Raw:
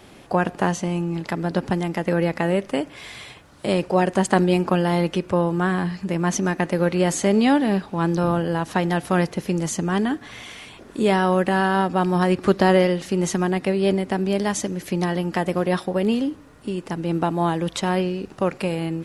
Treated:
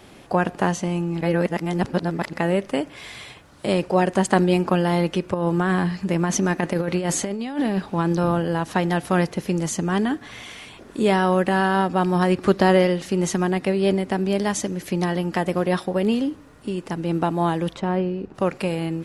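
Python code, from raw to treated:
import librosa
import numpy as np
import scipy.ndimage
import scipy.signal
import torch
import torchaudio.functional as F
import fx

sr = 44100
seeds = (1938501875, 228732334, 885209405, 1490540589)

y = fx.over_compress(x, sr, threshold_db=-21.0, ratio=-0.5, at=(5.34, 8.13))
y = fx.lowpass(y, sr, hz=1000.0, slope=6, at=(17.73, 18.34), fade=0.02)
y = fx.edit(y, sr, fx.reverse_span(start_s=1.21, length_s=1.12), tone=tone)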